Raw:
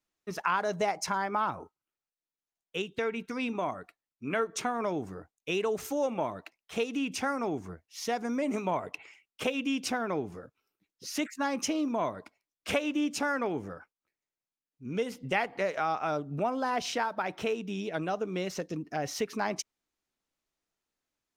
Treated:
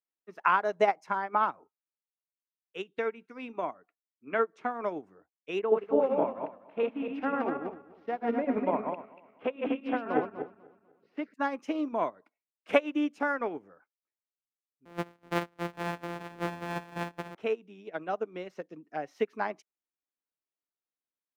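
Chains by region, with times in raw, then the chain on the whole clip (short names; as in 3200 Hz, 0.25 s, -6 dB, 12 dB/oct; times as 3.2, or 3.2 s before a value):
1.43–2.84 HPF 60 Hz + bell 13000 Hz +4.5 dB 2.6 oct
3.77–4.71 air absorption 85 m + mismatched tape noise reduction decoder only
5.59–11.34 regenerating reverse delay 0.124 s, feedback 61%, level -1 dB + air absorption 450 m
14.85–17.35 sample sorter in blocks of 256 samples + echo 0.887 s -5.5 dB
whole clip: three-band isolator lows -17 dB, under 200 Hz, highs -14 dB, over 2800 Hz; upward expander 2.5:1, over -39 dBFS; gain +8 dB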